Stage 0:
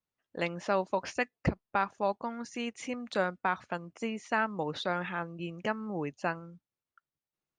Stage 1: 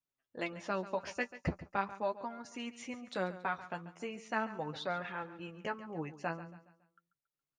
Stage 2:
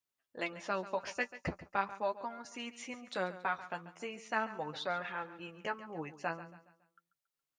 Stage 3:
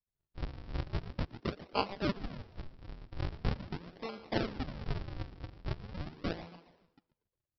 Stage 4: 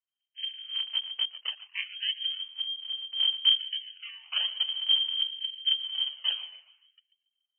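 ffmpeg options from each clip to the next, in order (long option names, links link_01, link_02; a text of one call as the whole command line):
ffmpeg -i in.wav -af "flanger=delay=7.1:depth=5.6:regen=24:speed=0.41:shape=sinusoidal,aecho=1:1:139|278|417|556:0.178|0.0729|0.0299|0.0123,volume=-2dB" out.wav
ffmpeg -i in.wav -af "lowshelf=frequency=340:gain=-8,volume=2dB" out.wav
ffmpeg -i in.wav -filter_complex "[0:a]aresample=11025,acrusher=samples=30:mix=1:aa=0.000001:lfo=1:lforange=48:lforate=0.42,aresample=44100,asplit=5[link_01][link_02][link_03][link_04][link_05];[link_02]adelay=118,afreqshift=81,volume=-21.5dB[link_06];[link_03]adelay=236,afreqshift=162,volume=-26.9dB[link_07];[link_04]adelay=354,afreqshift=243,volume=-32.2dB[link_08];[link_05]adelay=472,afreqshift=324,volume=-37.6dB[link_09];[link_01][link_06][link_07][link_08][link_09]amix=inputs=5:normalize=0,volume=1.5dB" out.wav
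ffmpeg -i in.wav -af "asubboost=boost=5:cutoff=190,lowpass=frequency=2700:width_type=q:width=0.5098,lowpass=frequency=2700:width_type=q:width=0.6013,lowpass=frequency=2700:width_type=q:width=0.9,lowpass=frequency=2700:width_type=q:width=2.563,afreqshift=-3200,afftfilt=real='re*gte(b*sr/1024,370*pow(1600/370,0.5+0.5*sin(2*PI*0.59*pts/sr)))':imag='im*gte(b*sr/1024,370*pow(1600/370,0.5+0.5*sin(2*PI*0.59*pts/sr)))':win_size=1024:overlap=0.75,volume=-2dB" out.wav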